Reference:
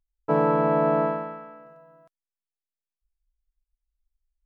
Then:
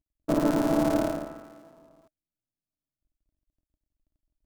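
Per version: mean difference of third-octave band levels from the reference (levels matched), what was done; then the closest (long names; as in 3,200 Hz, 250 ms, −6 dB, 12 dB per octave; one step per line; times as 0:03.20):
8.0 dB: sub-harmonics by changed cycles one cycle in 2, muted
bass and treble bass +8 dB, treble +6 dB
hollow resonant body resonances 300/620 Hz, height 14 dB, ringing for 50 ms
level −8.5 dB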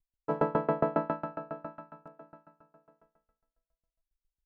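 5.0 dB: notch filter 2,400 Hz, Q 11
on a send: repeating echo 646 ms, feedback 28%, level −13 dB
on the sum: tremolo with a ramp in dB decaying 7.3 Hz, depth 27 dB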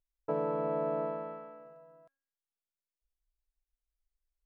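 2.5 dB: downward compressor 2 to 1, threshold −30 dBFS, peak gain reduction 7 dB
parametric band 520 Hz +7 dB 0.76 octaves
hum removal 273.6 Hz, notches 9
level −8 dB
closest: third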